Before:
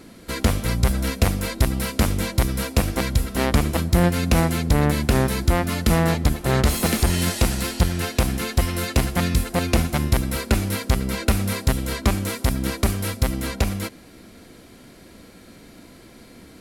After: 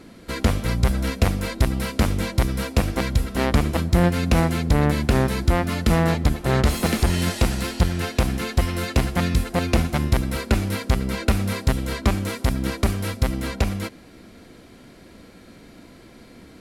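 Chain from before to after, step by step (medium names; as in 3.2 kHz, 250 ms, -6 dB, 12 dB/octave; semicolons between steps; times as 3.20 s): treble shelf 7 kHz -8.5 dB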